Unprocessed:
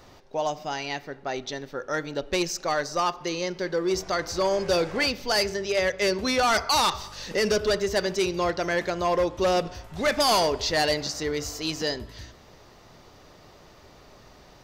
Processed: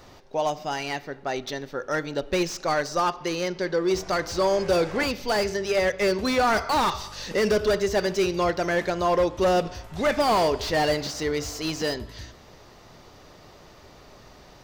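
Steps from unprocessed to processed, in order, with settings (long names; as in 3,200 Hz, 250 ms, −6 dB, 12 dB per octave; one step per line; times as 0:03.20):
0:03.00–0:03.85: low-pass filter 7,700 Hz
slew-rate limiting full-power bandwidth 110 Hz
level +2 dB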